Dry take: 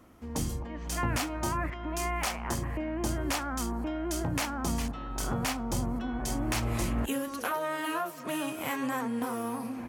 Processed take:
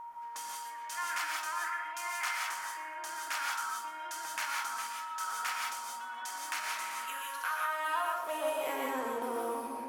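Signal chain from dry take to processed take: high-pass sweep 1.4 kHz -> 410 Hz, 7.53–8.85 s; whistle 940 Hz -35 dBFS; on a send: thinning echo 122 ms, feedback 31%, level -14 dB; on the sum: gated-style reverb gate 200 ms rising, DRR -0.5 dB; trim -7 dB

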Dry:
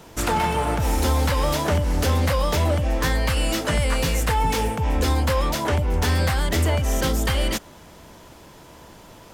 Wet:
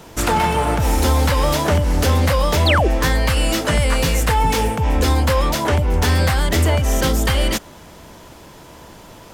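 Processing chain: painted sound fall, 2.66–2.88 s, 300–4800 Hz -22 dBFS; trim +4.5 dB

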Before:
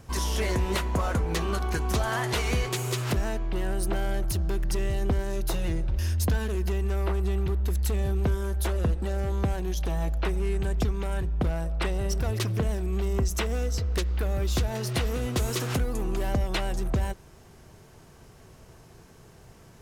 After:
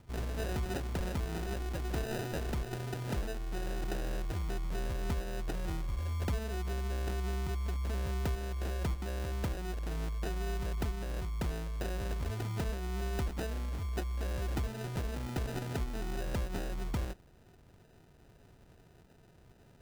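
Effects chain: band-stop 490 Hz; sample-and-hold 40×; trim -8.5 dB

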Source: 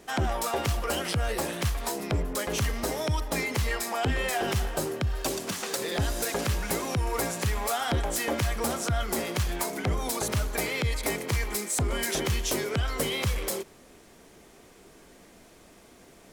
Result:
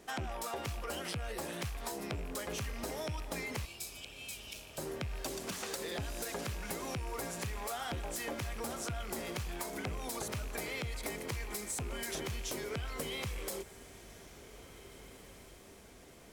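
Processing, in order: rattle on loud lows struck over -30 dBFS, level -28 dBFS; compression, threshold -31 dBFS, peak gain reduction 8.5 dB; 3.65–4.78 s: brick-wall FIR high-pass 2.2 kHz; echo that smears into a reverb 1850 ms, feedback 47%, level -16 dB; trim -5 dB

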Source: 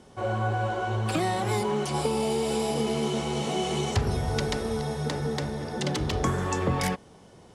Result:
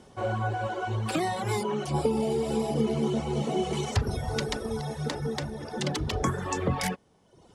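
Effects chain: reverb removal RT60 1 s; 1.84–3.73 s: tilt shelf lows +5.5 dB, about 790 Hz

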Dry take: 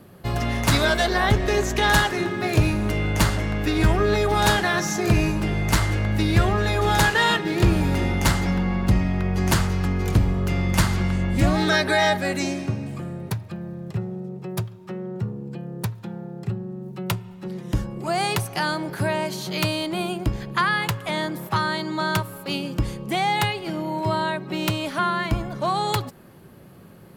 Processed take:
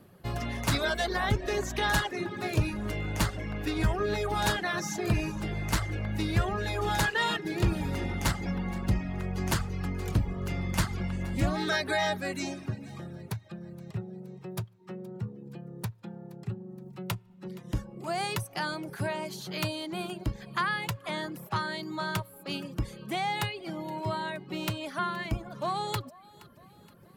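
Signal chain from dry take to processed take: thinning echo 471 ms, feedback 53%, level -20.5 dB; reverb removal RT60 0.62 s; trim -7.5 dB

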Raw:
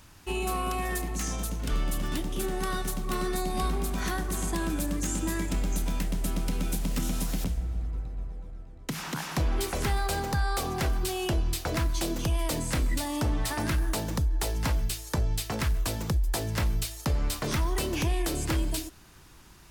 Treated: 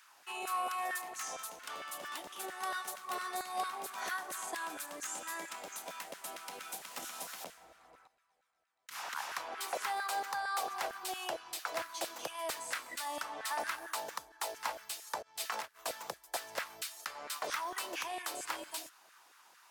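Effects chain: 8.07–8.91 s: amplifier tone stack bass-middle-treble 5-5-5; 15.22–15.79 s: compressor with a negative ratio -31 dBFS, ratio -0.5; LFO high-pass saw down 4.4 Hz 560–1600 Hz; trim -7 dB

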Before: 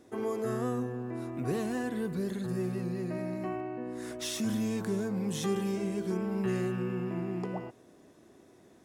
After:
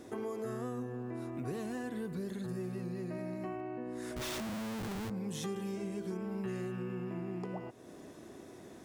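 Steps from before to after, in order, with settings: compression 2.5:1, threshold -50 dBFS, peak gain reduction 16 dB; 4.16–5.10 s: Schmitt trigger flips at -48 dBFS; trim +7 dB

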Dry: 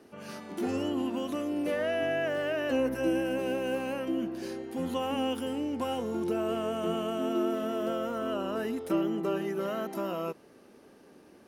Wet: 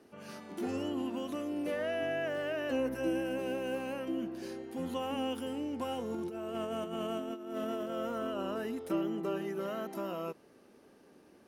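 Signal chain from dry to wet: 6.10–8.54 s: compressor with a negative ratio -32 dBFS, ratio -0.5; trim -4.5 dB

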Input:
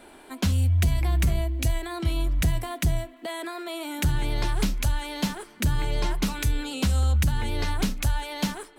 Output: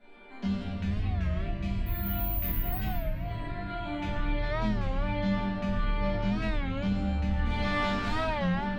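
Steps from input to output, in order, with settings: 7.44–8.34 s: spectral contrast reduction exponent 0.51; distance through air 200 m; 1.86–2.81 s: careless resampling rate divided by 3×, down none, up zero stuff; peaking EQ 110 Hz +13 dB 0.32 oct; chord resonator G3 minor, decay 0.34 s; simulated room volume 170 m³, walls hard, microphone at 1.4 m; compression 1.5:1, threshold -36 dBFS, peak gain reduction 4.5 dB; warped record 33 1/3 rpm, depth 160 cents; trim +5 dB

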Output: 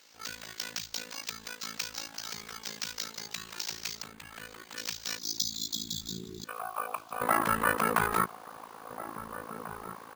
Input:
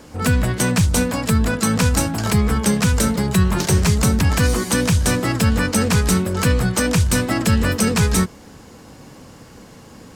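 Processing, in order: 6.44–7.21 s: vowel filter a; in parallel at 0 dB: peak limiter -11.5 dBFS, peak gain reduction 5 dB; on the sum: band-pass sweep 7.5 kHz -> 1.1 kHz, 5.02–6.72 s; 5.18–6.48 s: spectral selection erased 370–3300 Hz; AM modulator 55 Hz, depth 95%; added noise blue -55 dBFS; 4.02–4.77 s: distance through air 400 m; echo from a far wall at 290 m, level -11 dB; careless resampling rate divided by 4×, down filtered, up hold; trim +3.5 dB

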